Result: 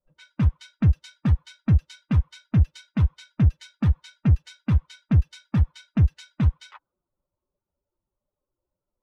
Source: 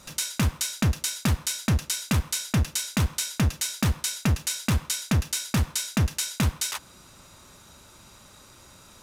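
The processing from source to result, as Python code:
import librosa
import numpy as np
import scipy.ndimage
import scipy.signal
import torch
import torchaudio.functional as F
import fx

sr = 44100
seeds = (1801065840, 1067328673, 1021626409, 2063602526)

y = fx.bin_expand(x, sr, power=2.0)
y = fx.env_lowpass(y, sr, base_hz=580.0, full_db=-21.5)
y = fx.bass_treble(y, sr, bass_db=11, treble_db=-13)
y = y * 10.0 ** (-3.0 / 20.0)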